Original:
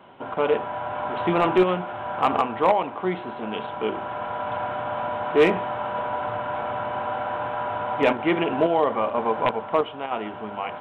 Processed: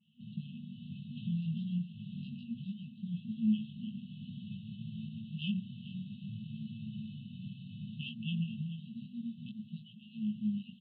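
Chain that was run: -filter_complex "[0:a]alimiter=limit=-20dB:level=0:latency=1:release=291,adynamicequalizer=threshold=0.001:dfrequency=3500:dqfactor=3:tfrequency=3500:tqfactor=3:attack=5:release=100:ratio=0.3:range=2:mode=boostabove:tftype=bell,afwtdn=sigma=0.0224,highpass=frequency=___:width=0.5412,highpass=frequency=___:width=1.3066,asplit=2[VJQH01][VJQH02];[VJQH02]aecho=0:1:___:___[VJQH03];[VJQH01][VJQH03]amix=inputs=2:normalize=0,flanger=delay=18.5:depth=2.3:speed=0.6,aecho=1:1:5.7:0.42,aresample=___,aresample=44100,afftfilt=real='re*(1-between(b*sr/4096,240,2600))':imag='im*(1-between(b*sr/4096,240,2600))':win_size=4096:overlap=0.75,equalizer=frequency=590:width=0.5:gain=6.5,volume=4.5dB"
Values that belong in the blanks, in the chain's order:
110, 110, 434, 0.188, 11025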